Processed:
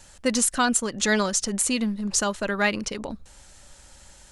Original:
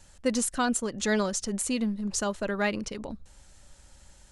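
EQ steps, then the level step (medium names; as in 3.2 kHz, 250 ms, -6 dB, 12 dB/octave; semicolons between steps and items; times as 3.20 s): dynamic bell 520 Hz, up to -4 dB, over -37 dBFS, Q 0.87; bass shelf 290 Hz -6 dB; +7.5 dB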